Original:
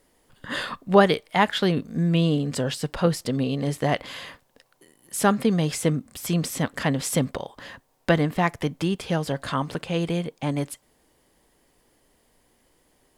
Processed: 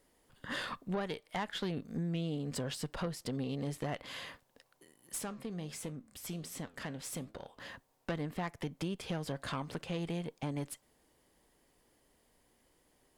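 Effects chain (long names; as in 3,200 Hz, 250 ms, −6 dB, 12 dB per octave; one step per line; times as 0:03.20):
downward compressor 4 to 1, threshold −27 dBFS, peak gain reduction 14.5 dB
tube saturation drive 23 dB, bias 0.45
0:05.18–0:07.60: flanger 1.4 Hz, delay 9.1 ms, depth 8.5 ms, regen +82%
level −5 dB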